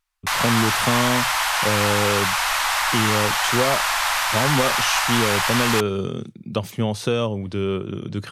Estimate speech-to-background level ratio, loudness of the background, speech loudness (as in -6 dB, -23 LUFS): -4.5 dB, -20.0 LUFS, -24.5 LUFS